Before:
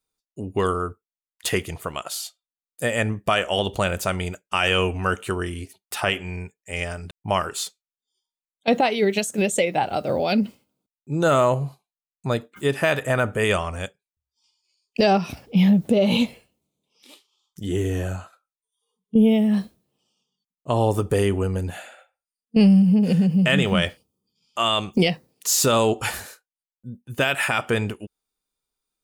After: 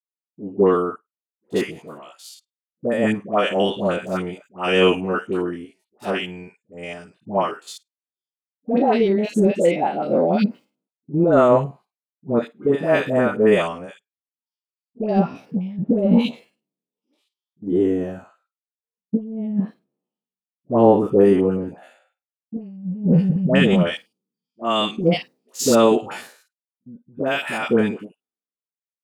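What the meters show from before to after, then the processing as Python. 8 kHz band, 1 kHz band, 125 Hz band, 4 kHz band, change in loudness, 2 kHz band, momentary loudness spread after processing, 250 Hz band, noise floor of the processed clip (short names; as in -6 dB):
n/a, +1.0 dB, -1.0 dB, -3.0 dB, +2.0 dB, -2.5 dB, 18 LU, +1.5 dB, under -85 dBFS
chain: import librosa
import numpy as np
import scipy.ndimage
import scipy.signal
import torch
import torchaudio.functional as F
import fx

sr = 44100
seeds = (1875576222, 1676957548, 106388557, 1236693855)

y = fx.spec_steps(x, sr, hold_ms=50)
y = scipy.signal.sosfilt(scipy.signal.butter(4, 210.0, 'highpass', fs=sr, output='sos'), y)
y = fx.tilt_eq(y, sr, slope=-4.0)
y = fx.over_compress(y, sr, threshold_db=-16.0, ratio=-0.5)
y = fx.dispersion(y, sr, late='highs', ms=102.0, hz=830.0)
y = fx.band_widen(y, sr, depth_pct=70)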